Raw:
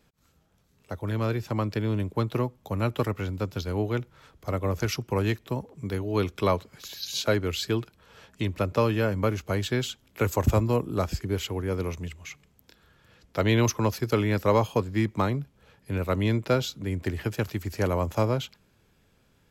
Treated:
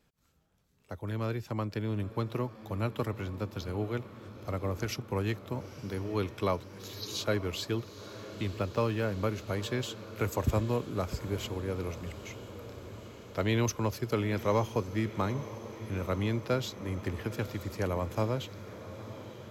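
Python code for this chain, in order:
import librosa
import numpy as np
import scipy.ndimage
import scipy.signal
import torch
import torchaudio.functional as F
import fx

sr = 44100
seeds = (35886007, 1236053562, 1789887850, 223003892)

y = fx.median_filter(x, sr, points=5, at=(8.56, 9.06))
y = fx.echo_diffused(y, sr, ms=927, feedback_pct=72, wet_db=-14)
y = y * 10.0 ** (-6.0 / 20.0)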